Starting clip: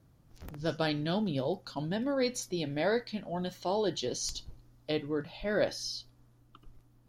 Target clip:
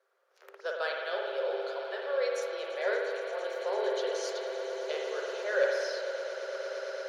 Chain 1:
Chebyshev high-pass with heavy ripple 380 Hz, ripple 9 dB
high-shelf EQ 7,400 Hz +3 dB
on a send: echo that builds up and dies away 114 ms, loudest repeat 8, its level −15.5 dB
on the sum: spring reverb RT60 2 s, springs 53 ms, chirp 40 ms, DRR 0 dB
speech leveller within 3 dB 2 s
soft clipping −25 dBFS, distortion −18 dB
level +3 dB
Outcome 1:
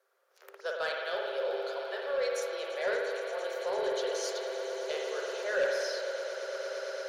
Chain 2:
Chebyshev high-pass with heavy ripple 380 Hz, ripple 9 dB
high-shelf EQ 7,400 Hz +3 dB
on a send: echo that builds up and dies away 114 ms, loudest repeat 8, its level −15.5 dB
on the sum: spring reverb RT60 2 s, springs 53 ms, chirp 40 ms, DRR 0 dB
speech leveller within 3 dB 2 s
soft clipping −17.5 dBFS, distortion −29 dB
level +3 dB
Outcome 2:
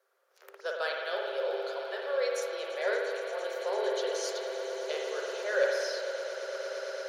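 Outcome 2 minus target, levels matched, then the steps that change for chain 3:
8,000 Hz band +4.0 dB
change: high-shelf EQ 7,400 Hz −7.5 dB

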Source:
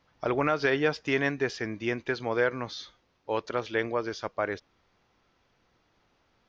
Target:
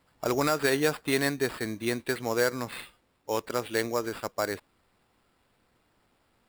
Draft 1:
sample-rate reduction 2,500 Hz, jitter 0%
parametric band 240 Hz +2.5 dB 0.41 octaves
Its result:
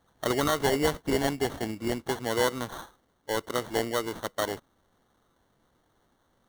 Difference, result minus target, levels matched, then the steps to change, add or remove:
sample-rate reduction: distortion +7 dB
change: sample-rate reduction 6,200 Hz, jitter 0%

